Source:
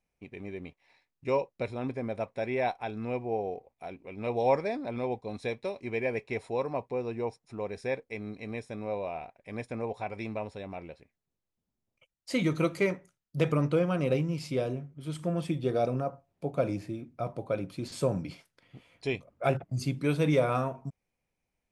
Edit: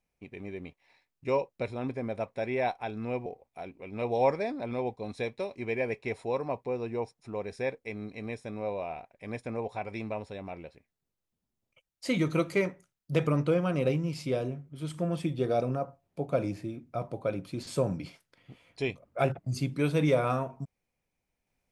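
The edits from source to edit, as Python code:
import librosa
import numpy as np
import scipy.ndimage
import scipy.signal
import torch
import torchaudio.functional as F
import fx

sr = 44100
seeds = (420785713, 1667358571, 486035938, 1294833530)

y = fx.edit(x, sr, fx.cut(start_s=3.26, length_s=0.25), tone=tone)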